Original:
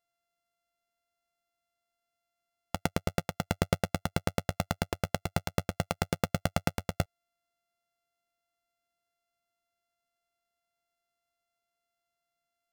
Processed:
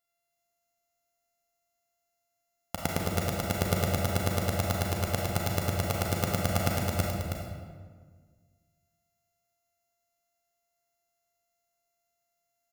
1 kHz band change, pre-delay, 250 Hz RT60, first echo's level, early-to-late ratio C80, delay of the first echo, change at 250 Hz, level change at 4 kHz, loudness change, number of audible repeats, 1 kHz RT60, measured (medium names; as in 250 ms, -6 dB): +2.0 dB, 31 ms, 1.9 s, -6.5 dB, 1.0 dB, 318 ms, +1.5 dB, +3.0 dB, +3.5 dB, 1, 1.6 s